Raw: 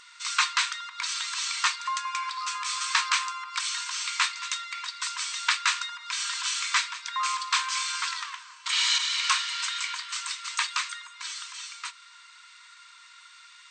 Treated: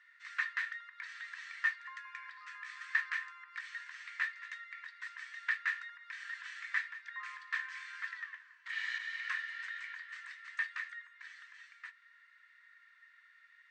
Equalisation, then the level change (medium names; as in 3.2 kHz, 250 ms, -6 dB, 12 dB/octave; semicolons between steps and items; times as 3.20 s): band-pass filter 1.8 kHz, Q 18; +4.0 dB